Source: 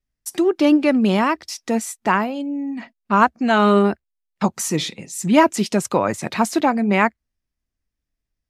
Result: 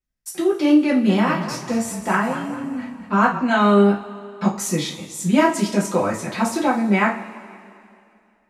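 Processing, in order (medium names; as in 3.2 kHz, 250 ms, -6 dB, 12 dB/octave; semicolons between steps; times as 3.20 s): 0.87–3.39 s: frequency-shifting echo 208 ms, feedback 42%, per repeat -32 Hz, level -11 dB; two-slope reverb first 0.31 s, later 2.5 s, from -20 dB, DRR -5 dB; trim -7.5 dB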